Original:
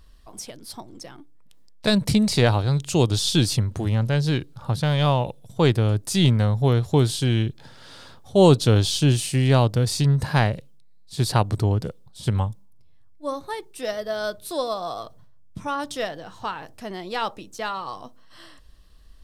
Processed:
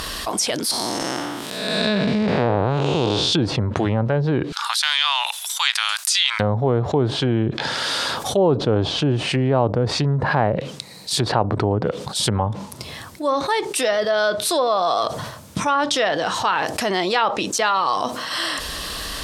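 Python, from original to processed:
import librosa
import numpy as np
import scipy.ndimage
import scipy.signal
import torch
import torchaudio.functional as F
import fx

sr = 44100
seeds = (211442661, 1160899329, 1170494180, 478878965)

y = fx.spec_blur(x, sr, span_ms=286.0, at=(0.71, 3.33))
y = fx.bessel_highpass(y, sr, hz=1800.0, order=8, at=(4.52, 6.4))
y = fx.env_lowpass_down(y, sr, base_hz=860.0, full_db=-17.5)
y = fx.highpass(y, sr, hz=590.0, slope=6)
y = fx.env_flatten(y, sr, amount_pct=70)
y = F.gain(torch.from_numpy(y), 2.5).numpy()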